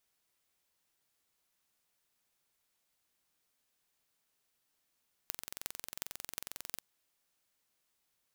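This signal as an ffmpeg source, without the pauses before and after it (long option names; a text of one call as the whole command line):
ffmpeg -f lavfi -i "aevalsrc='0.376*eq(mod(n,1986),0)*(0.5+0.5*eq(mod(n,15888),0))':duration=1.52:sample_rate=44100" out.wav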